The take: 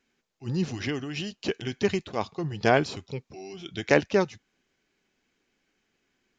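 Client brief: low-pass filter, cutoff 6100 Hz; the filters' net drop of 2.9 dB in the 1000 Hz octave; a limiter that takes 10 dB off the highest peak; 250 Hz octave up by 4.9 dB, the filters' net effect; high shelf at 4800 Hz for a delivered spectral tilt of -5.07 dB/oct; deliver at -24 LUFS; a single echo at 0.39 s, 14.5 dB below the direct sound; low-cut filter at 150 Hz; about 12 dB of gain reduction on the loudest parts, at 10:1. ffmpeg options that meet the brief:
-af "highpass=150,lowpass=6.1k,equalizer=f=250:t=o:g=8,equalizer=f=1k:t=o:g=-5.5,highshelf=f=4.8k:g=3,acompressor=threshold=-27dB:ratio=10,alimiter=limit=-24dB:level=0:latency=1,aecho=1:1:390:0.188,volume=12dB"

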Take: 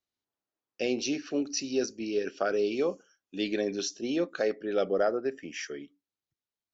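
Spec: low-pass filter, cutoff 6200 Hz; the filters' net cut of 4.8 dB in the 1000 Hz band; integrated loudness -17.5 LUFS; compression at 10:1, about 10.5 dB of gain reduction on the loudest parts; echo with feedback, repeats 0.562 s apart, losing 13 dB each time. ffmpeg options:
-af "lowpass=6.2k,equalizer=f=1k:t=o:g=-8.5,acompressor=threshold=-35dB:ratio=10,aecho=1:1:562|1124|1686:0.224|0.0493|0.0108,volume=22.5dB"

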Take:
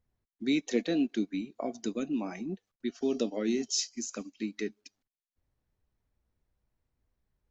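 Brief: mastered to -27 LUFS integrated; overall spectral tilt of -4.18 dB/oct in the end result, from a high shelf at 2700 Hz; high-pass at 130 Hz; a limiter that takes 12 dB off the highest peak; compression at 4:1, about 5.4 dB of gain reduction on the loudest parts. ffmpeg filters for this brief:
-af "highpass=130,highshelf=f=2.7k:g=-8.5,acompressor=threshold=-30dB:ratio=4,volume=16dB,alimiter=limit=-17dB:level=0:latency=1"

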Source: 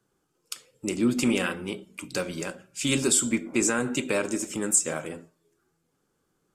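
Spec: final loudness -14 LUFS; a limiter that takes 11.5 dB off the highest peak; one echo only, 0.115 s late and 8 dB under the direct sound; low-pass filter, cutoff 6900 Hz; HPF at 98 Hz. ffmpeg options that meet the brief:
-af "highpass=98,lowpass=6.9k,alimiter=limit=-23dB:level=0:latency=1,aecho=1:1:115:0.398,volume=19dB"

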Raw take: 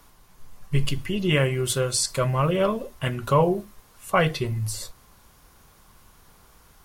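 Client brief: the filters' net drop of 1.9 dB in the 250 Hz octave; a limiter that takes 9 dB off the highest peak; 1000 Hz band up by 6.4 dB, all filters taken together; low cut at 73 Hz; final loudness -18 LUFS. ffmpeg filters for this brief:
-af "highpass=73,equalizer=f=250:t=o:g=-4,equalizer=f=1k:t=o:g=7.5,volume=7.5dB,alimiter=limit=-5dB:level=0:latency=1"

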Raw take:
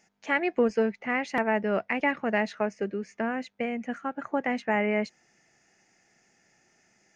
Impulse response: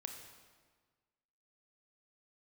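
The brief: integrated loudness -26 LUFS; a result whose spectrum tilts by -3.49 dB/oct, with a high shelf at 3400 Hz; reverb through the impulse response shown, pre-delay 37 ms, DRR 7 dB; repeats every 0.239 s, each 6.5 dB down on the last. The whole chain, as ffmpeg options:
-filter_complex "[0:a]highshelf=f=3.4k:g=5.5,aecho=1:1:239|478|717|956|1195|1434:0.473|0.222|0.105|0.0491|0.0231|0.0109,asplit=2[a][b];[1:a]atrim=start_sample=2205,adelay=37[c];[b][c]afir=irnorm=-1:irlink=0,volume=-4dB[d];[a][d]amix=inputs=2:normalize=0,volume=0.5dB"

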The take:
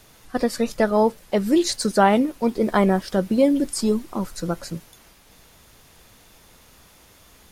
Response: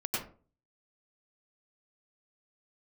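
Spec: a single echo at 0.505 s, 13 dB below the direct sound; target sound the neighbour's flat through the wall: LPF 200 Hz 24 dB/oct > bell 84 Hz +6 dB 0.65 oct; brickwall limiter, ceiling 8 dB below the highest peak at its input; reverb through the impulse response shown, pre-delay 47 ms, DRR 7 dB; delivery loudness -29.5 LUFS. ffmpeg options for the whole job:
-filter_complex "[0:a]alimiter=limit=-12dB:level=0:latency=1,aecho=1:1:505:0.224,asplit=2[a][b];[1:a]atrim=start_sample=2205,adelay=47[c];[b][c]afir=irnorm=-1:irlink=0,volume=-12.5dB[d];[a][d]amix=inputs=2:normalize=0,lowpass=f=200:w=0.5412,lowpass=f=200:w=1.3066,equalizer=f=84:t=o:w=0.65:g=6,volume=0.5dB"

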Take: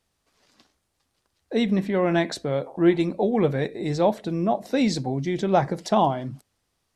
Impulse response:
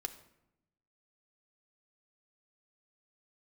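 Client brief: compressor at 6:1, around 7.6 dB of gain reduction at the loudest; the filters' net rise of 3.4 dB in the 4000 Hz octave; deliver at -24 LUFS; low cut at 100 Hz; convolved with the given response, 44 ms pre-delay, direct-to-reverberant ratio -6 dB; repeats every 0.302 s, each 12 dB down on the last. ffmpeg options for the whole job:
-filter_complex "[0:a]highpass=100,equalizer=f=4k:t=o:g=4,acompressor=threshold=-22dB:ratio=6,aecho=1:1:302|604|906:0.251|0.0628|0.0157,asplit=2[a][b];[1:a]atrim=start_sample=2205,adelay=44[c];[b][c]afir=irnorm=-1:irlink=0,volume=7dB[d];[a][d]amix=inputs=2:normalize=0,volume=-3.5dB"

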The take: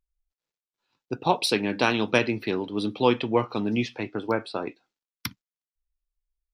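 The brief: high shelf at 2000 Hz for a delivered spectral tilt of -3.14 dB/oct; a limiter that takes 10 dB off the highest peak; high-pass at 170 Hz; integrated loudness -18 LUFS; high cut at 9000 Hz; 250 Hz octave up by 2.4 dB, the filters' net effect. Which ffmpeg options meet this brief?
-af "highpass=170,lowpass=9k,equalizer=f=250:t=o:g=4,highshelf=f=2k:g=3.5,volume=9.5dB,alimiter=limit=-4.5dB:level=0:latency=1"

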